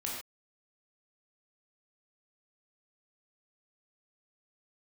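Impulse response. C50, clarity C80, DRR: 1.0 dB, 4.0 dB, -4.0 dB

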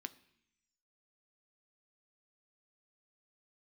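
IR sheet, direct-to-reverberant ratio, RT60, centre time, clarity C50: 11.0 dB, 0.70 s, 4 ms, 18.5 dB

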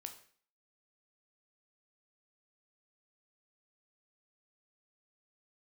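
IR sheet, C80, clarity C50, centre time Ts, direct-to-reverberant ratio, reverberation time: 14.0 dB, 11.0 dB, 12 ms, 5.5 dB, 0.50 s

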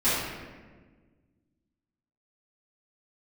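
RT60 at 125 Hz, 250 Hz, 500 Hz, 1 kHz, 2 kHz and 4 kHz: 2.1, 2.1, 1.6, 1.3, 1.2, 0.90 s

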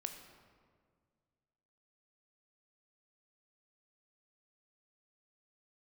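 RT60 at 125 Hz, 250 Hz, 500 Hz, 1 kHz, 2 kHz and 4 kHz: 2.4, 2.2, 2.0, 1.7, 1.4, 1.1 s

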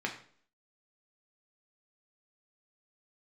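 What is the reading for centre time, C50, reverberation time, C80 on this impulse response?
16 ms, 10.0 dB, 0.50 s, 13.0 dB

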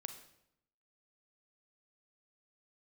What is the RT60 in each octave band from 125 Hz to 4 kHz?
0.95, 0.95, 0.80, 0.75, 0.70, 0.65 s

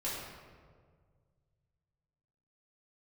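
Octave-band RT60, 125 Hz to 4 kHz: 3.1, 2.1, 2.0, 1.6, 1.2, 0.95 s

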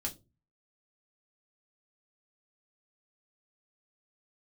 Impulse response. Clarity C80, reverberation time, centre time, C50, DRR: 26.0 dB, not exponential, 10 ms, 18.0 dB, -0.5 dB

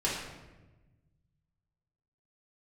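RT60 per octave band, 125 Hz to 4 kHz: 2.3, 1.7, 1.3, 1.0, 1.0, 0.75 s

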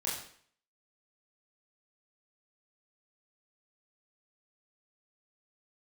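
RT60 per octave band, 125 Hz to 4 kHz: 0.55, 0.55, 0.55, 0.55, 0.55, 0.50 s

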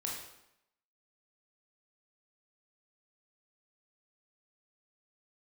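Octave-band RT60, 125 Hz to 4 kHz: 0.80, 0.80, 0.80, 0.80, 0.75, 0.70 s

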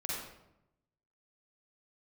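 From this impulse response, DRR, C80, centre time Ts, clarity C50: -6.0 dB, 1.5 dB, 77 ms, -3.0 dB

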